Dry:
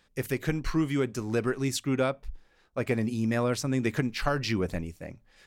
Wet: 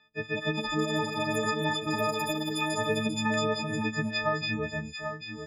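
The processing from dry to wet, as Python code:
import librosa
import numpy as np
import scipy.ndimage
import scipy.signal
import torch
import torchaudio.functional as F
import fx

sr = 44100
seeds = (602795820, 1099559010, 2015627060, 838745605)

y = fx.freq_snap(x, sr, grid_st=6)
y = fx.lowpass(y, sr, hz=fx.steps((0.0, 3700.0), (3.34, 7100.0)), slope=24)
y = fx.env_lowpass_down(y, sr, base_hz=2700.0, full_db=-20.0)
y = scipy.signal.sosfilt(scipy.signal.butter(2, 94.0, 'highpass', fs=sr, output='sos'), y)
y = y + 10.0 ** (-9.0 / 20.0) * np.pad(y, (int(792 * sr / 1000.0), 0))[:len(y)]
y = fx.echo_pitch(y, sr, ms=243, semitones=6, count=3, db_per_echo=-3.0)
y = F.gain(torch.from_numpy(y), -4.0).numpy()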